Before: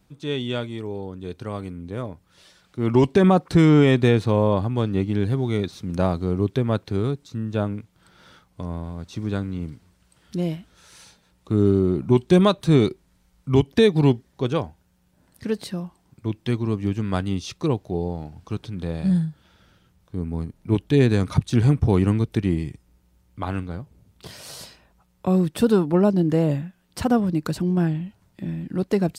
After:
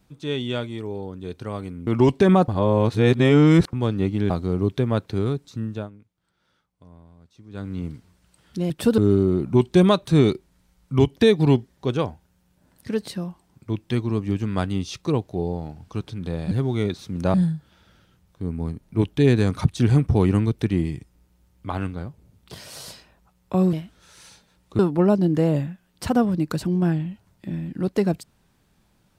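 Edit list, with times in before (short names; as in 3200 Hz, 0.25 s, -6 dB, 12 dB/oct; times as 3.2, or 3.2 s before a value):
1.87–2.82 cut
3.43–4.68 reverse
5.25–6.08 move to 19.07
7.42–9.54 dip -18 dB, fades 0.26 s
10.48–11.54 swap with 25.46–25.74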